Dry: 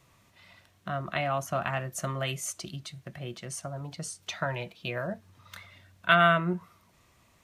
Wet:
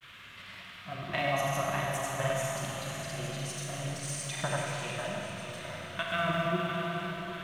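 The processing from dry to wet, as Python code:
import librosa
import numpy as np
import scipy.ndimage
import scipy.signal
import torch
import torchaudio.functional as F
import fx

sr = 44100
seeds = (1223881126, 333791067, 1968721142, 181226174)

p1 = fx.law_mismatch(x, sr, coded='mu')
p2 = fx.peak_eq(p1, sr, hz=1400.0, db=-8.0, octaves=0.21)
p3 = fx.level_steps(p2, sr, step_db=10)
p4 = p3 + fx.echo_swing(p3, sr, ms=718, ratio=3, feedback_pct=50, wet_db=-8.5, dry=0)
p5 = fx.dmg_noise_band(p4, sr, seeds[0], low_hz=1100.0, high_hz=3500.0, level_db=-52.0)
p6 = fx.granulator(p5, sr, seeds[1], grain_ms=100.0, per_s=20.0, spray_ms=100.0, spread_st=0)
y = fx.rev_schroeder(p6, sr, rt60_s=3.0, comb_ms=28, drr_db=-1.5)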